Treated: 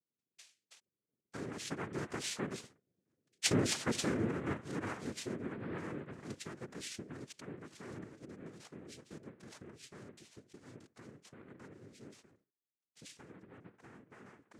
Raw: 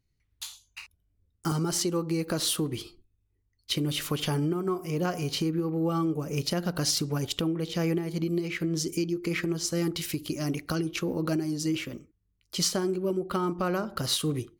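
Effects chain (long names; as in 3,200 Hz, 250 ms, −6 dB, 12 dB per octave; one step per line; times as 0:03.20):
source passing by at 0:03.42, 28 m/s, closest 13 metres
cochlear-implant simulation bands 3
level −1.5 dB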